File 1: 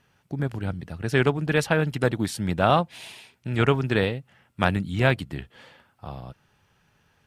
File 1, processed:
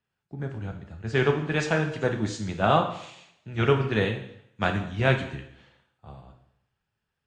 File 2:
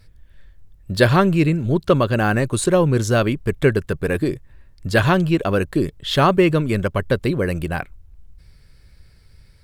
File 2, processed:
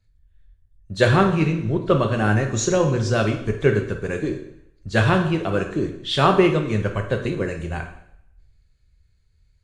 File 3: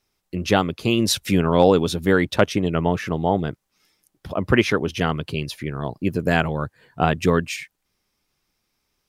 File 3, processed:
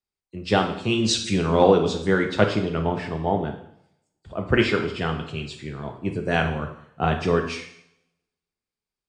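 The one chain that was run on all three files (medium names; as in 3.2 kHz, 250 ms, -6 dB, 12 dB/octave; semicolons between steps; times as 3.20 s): knee-point frequency compression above 3.8 kHz 1.5:1; two-slope reverb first 0.88 s, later 2.3 s, from -28 dB, DRR 3.5 dB; three bands expanded up and down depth 40%; trim -4 dB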